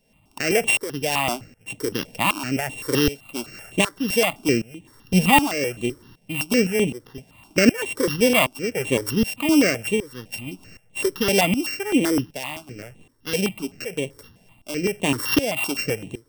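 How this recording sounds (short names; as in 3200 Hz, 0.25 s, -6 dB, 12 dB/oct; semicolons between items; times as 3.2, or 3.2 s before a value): a buzz of ramps at a fixed pitch in blocks of 16 samples; tremolo saw up 1.3 Hz, depth 85%; notches that jump at a steady rate 7.8 Hz 330–5100 Hz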